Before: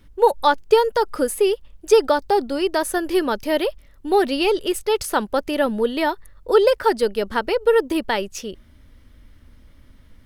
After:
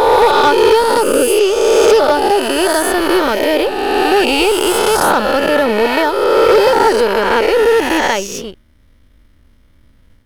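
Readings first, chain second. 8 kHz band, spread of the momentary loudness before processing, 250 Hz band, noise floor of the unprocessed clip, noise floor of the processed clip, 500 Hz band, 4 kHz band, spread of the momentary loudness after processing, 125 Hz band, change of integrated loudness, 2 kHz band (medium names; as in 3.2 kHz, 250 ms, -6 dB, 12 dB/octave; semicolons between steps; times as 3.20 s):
+11.5 dB, 8 LU, +7.0 dB, -50 dBFS, -49 dBFS, +7.5 dB, +10.5 dB, 5 LU, no reading, +8.0 dB, +11.0 dB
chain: reverse spectral sustain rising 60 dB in 2.32 s; saturation -11 dBFS, distortion -13 dB; power-law waveshaper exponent 1.4; trim +7 dB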